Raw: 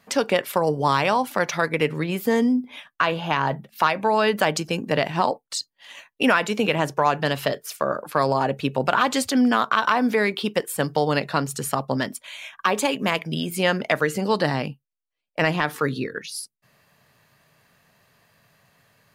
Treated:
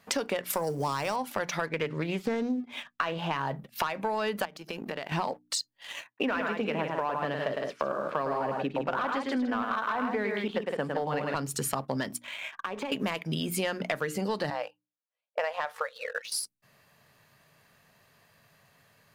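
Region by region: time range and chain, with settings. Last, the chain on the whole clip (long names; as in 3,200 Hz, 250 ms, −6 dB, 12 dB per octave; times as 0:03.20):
0:00.50–0:01.16: mu-law and A-law mismatch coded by mu + high shelf with overshoot 4,700 Hz +7.5 dB, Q 1.5
0:01.66–0:03.40: low-pass filter 6,100 Hz + highs frequency-modulated by the lows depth 0.21 ms
0:04.45–0:05.12: high-pass filter 330 Hz 6 dB per octave + downward compressor 8 to 1, threshold −34 dBFS + parametric band 7,700 Hz −10 dB 0.9 octaves
0:06.07–0:11.35: band-pass filter 160–2,300 Hz + multi-tap delay 106/160 ms −5.5/−7.5 dB
0:12.24–0:12.92: low-pass filter 2,600 Hz + downward compressor 8 to 1, threshold −33 dBFS
0:14.50–0:16.32: linear-phase brick-wall high-pass 470 Hz + spectral tilt −3.5 dB per octave
whole clip: mains-hum notches 60/120/180/240/300 Hz; leveller curve on the samples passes 1; downward compressor 6 to 1, threshold −28 dBFS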